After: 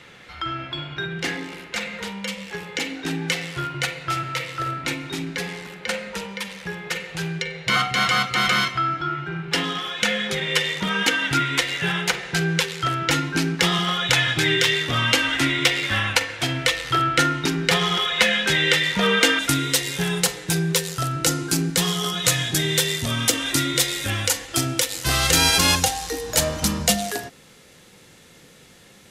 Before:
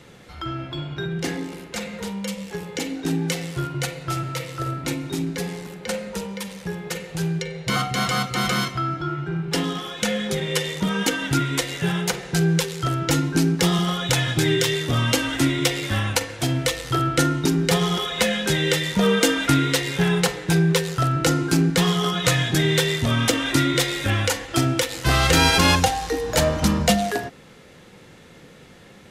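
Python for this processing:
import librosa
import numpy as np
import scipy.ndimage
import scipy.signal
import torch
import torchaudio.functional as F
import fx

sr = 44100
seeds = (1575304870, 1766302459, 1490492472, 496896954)

y = fx.peak_eq(x, sr, hz=fx.steps((0.0, 2200.0), (19.39, 12000.0)), db=12.0, octaves=2.6)
y = y * librosa.db_to_amplitude(-5.0)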